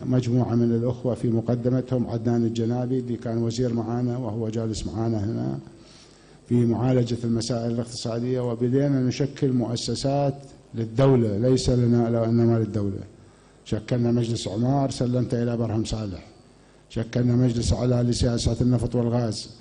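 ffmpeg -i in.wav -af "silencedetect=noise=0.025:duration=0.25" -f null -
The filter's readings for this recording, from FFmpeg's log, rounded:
silence_start: 5.67
silence_end: 6.51 | silence_duration: 0.83
silence_start: 10.35
silence_end: 10.74 | silence_duration: 0.39
silence_start: 13.03
silence_end: 13.68 | silence_duration: 0.65
silence_start: 16.20
silence_end: 16.93 | silence_duration: 0.74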